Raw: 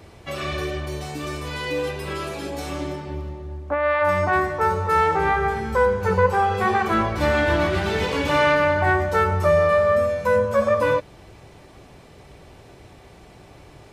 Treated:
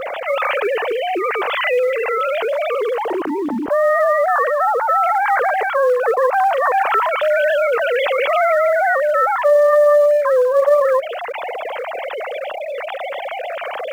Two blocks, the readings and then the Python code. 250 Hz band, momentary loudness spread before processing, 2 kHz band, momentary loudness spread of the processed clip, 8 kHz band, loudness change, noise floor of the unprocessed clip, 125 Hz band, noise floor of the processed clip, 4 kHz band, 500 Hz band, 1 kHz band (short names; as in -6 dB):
-2.0 dB, 12 LU, +3.5 dB, 12 LU, n/a, +4.0 dB, -47 dBFS, under -25 dB, -27 dBFS, +2.5 dB, +6.5 dB, +5.0 dB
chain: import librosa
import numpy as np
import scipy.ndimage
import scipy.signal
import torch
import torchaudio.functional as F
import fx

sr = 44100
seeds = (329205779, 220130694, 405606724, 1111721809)

p1 = fx.sine_speech(x, sr)
p2 = fx.quant_float(p1, sr, bits=2)
p3 = p1 + (p2 * 10.0 ** (-11.5 / 20.0))
p4 = fx.env_flatten(p3, sr, amount_pct=70)
y = p4 * 10.0 ** (-4.5 / 20.0)